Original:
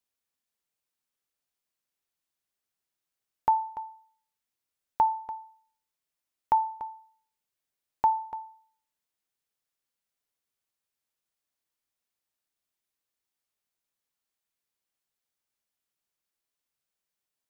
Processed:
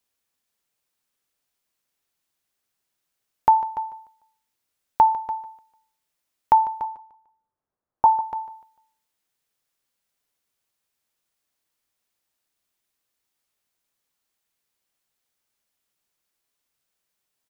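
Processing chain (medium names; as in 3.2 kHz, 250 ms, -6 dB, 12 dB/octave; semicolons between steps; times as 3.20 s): 6.84–8.06 s: low-pass 1.3 kHz 24 dB/octave; feedback delay 149 ms, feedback 34%, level -16 dB; trim +7.5 dB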